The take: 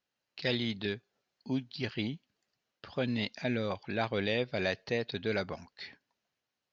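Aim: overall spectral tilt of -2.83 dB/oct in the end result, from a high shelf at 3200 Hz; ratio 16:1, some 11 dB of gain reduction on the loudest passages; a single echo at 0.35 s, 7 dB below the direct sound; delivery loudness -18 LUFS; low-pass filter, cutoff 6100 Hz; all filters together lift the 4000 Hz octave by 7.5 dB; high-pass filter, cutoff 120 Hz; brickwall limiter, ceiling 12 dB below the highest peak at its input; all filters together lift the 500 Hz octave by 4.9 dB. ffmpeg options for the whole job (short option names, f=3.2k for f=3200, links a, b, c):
-af "highpass=120,lowpass=6.1k,equalizer=f=500:t=o:g=5.5,highshelf=f=3.2k:g=6.5,equalizer=f=4k:t=o:g=5,acompressor=threshold=-33dB:ratio=16,alimiter=level_in=8.5dB:limit=-24dB:level=0:latency=1,volume=-8.5dB,aecho=1:1:350:0.447,volume=25.5dB"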